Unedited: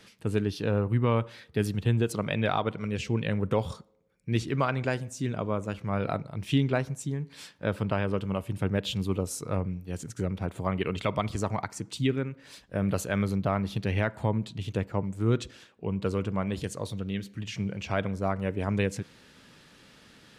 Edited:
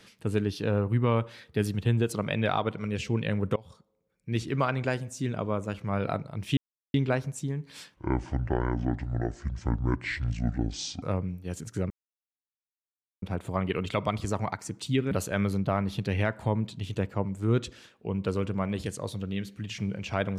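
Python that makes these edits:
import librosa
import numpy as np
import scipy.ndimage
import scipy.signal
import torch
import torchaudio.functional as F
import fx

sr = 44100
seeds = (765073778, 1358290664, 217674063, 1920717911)

y = fx.edit(x, sr, fx.fade_in_from(start_s=3.56, length_s=1.03, floor_db=-24.0),
    fx.insert_silence(at_s=6.57, length_s=0.37),
    fx.speed_span(start_s=7.57, length_s=1.88, speed=0.61),
    fx.insert_silence(at_s=10.33, length_s=1.32),
    fx.cut(start_s=12.22, length_s=0.67), tone=tone)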